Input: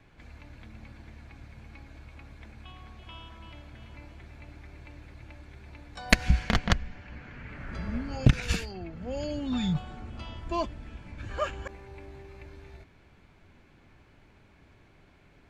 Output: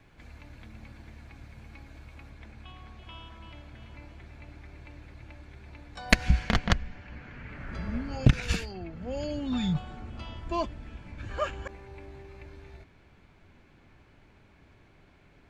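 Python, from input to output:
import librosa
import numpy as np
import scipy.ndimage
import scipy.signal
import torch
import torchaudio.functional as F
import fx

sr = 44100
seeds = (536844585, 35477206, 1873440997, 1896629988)

y = fx.high_shelf(x, sr, hz=9300.0, db=fx.steps((0.0, 5.0), (2.29, -4.5)))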